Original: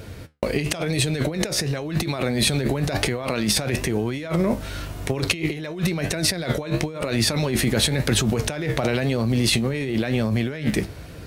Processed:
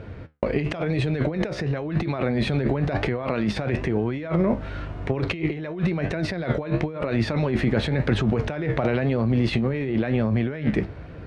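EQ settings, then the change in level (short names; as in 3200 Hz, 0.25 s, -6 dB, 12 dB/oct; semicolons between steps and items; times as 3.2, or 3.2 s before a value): LPF 2000 Hz 12 dB/oct; 0.0 dB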